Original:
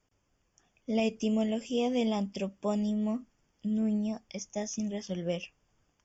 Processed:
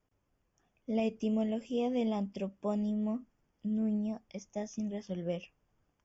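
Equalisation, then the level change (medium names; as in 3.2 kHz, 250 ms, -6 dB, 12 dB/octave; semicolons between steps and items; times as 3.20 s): treble shelf 2.9 kHz -11.5 dB; -2.5 dB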